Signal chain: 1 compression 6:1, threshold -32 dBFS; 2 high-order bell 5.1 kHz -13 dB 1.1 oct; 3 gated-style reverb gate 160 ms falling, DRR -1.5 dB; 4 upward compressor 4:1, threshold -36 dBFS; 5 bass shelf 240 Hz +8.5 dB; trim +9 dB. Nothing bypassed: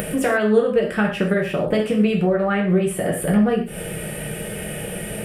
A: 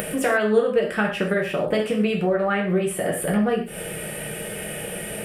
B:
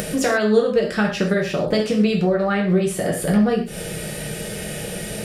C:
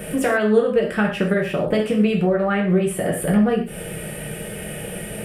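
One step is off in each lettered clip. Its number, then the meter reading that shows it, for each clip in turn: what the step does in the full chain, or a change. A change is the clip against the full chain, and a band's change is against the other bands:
5, 125 Hz band -5.0 dB; 2, 4 kHz band +4.0 dB; 4, momentary loudness spread change +2 LU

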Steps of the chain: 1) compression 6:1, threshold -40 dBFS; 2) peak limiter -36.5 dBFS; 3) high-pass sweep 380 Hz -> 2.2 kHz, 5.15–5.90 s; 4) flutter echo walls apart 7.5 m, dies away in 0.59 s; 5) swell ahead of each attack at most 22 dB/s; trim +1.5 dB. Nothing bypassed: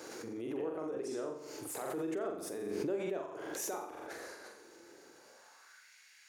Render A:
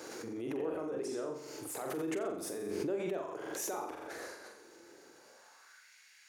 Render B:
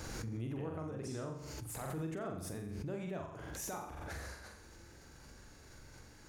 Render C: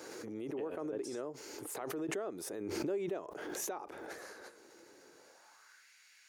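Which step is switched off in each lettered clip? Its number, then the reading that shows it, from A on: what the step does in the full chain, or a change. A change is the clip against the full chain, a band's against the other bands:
1, mean gain reduction 10.0 dB; 3, 125 Hz band +15.0 dB; 4, momentary loudness spread change +1 LU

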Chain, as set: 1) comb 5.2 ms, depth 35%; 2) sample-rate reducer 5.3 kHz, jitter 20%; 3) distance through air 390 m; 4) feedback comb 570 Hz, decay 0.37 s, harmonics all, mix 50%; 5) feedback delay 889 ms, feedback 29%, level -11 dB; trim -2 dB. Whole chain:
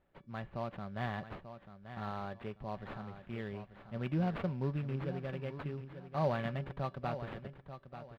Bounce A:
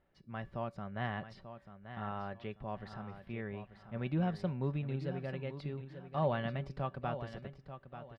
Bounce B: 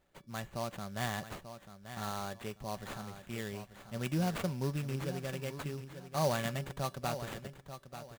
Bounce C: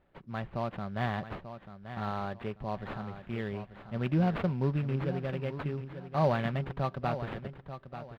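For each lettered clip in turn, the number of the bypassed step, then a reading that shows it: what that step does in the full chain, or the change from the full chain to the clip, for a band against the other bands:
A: 2, distortion -5 dB; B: 3, 4 kHz band +8.5 dB; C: 4, loudness change +5.5 LU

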